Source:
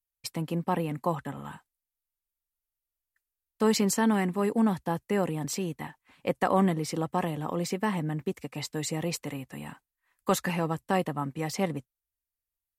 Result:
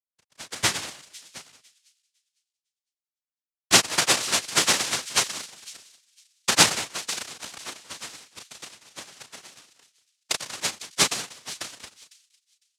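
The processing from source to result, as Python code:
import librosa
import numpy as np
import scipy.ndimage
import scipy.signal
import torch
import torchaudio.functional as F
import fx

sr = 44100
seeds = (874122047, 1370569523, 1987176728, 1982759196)

y = fx.law_mismatch(x, sr, coded='A')
y = fx.recorder_agc(y, sr, target_db=-20.5, rise_db_per_s=15.0, max_gain_db=30)
y = fx.granulator(y, sr, seeds[0], grain_ms=100.0, per_s=8.4, spray_ms=100.0, spread_st=0)
y = fx.cheby_harmonics(y, sr, harmonics=(3, 6), levels_db=(-15, -8), full_scale_db=-8.0)
y = scipy.signal.sosfilt(scipy.signal.butter(2, 150.0, 'highpass', fs=sr, output='sos'), y)
y = fx.high_shelf(y, sr, hz=5300.0, db=-3.5)
y = fx.doubler(y, sr, ms=35.0, db=-6)
y = y + 10.0 ** (-10.0 / 20.0) * np.pad(y, (int(189 * sr / 1000.0), 0))[:len(y)]
y = fx.noise_vocoder(y, sr, seeds[1], bands=1)
y = fx.echo_wet_highpass(y, sr, ms=504, feedback_pct=44, hz=2600.0, wet_db=-9.5)
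y = fx.band_widen(y, sr, depth_pct=100)
y = F.gain(torch.from_numpy(y), -1.5).numpy()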